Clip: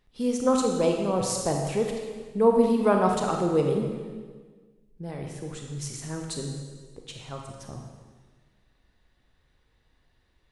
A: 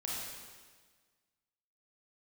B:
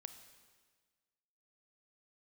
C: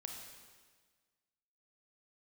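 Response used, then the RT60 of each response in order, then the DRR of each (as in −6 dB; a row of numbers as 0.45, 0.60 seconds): C; 1.5, 1.5, 1.5 seconds; −5.0, 9.0, 1.5 decibels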